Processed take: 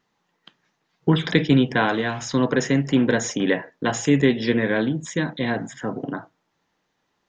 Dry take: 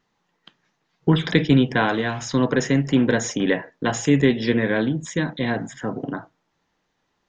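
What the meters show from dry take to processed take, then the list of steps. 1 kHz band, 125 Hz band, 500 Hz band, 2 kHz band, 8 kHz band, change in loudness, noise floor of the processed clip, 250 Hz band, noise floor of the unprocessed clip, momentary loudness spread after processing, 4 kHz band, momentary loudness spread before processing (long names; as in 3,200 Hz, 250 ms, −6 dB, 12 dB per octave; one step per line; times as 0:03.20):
0.0 dB, −1.5 dB, 0.0 dB, 0.0 dB, can't be measured, −0.5 dB, −73 dBFS, −0.5 dB, −73 dBFS, 10 LU, 0.0 dB, 10 LU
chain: low-shelf EQ 60 Hz −9.5 dB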